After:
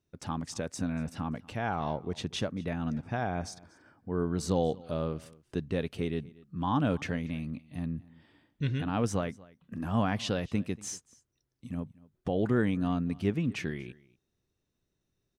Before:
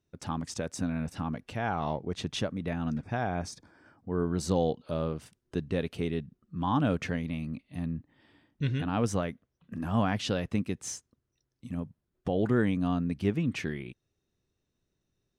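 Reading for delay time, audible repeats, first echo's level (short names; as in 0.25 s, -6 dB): 0.237 s, 1, -22.5 dB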